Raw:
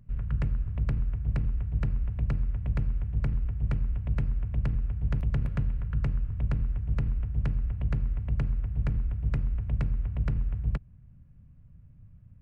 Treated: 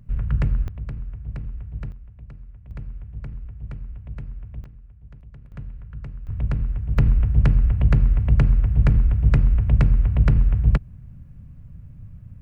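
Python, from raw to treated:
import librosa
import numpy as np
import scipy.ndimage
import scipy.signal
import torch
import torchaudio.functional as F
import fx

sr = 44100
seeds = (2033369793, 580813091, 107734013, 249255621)

y = fx.gain(x, sr, db=fx.steps((0.0, 7.0), (0.68, -3.5), (1.92, -13.0), (2.71, -6.0), (4.64, -16.5), (5.52, -7.0), (6.27, 4.5), (6.98, 11.5)))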